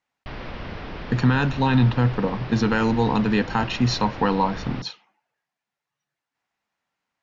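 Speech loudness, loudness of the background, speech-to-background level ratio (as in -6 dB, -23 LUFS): -22.0 LUFS, -36.0 LUFS, 14.0 dB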